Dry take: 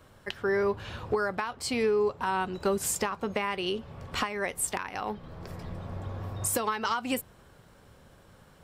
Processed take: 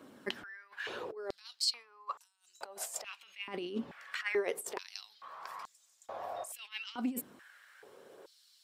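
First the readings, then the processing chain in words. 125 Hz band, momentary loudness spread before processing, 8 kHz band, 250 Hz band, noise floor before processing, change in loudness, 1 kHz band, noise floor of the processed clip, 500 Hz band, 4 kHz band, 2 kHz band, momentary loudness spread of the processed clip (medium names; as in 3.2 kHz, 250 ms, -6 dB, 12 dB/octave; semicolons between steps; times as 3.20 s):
-21.5 dB, 12 LU, -10.0 dB, -8.0 dB, -57 dBFS, -9.0 dB, -13.0 dB, -69 dBFS, -11.5 dB, -2.0 dB, -8.0 dB, 23 LU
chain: phaser 0.85 Hz, delay 1.8 ms, feedback 21%; compressor with a negative ratio -34 dBFS, ratio -0.5; step-sequenced high-pass 2.3 Hz 260–7000 Hz; trim -6.5 dB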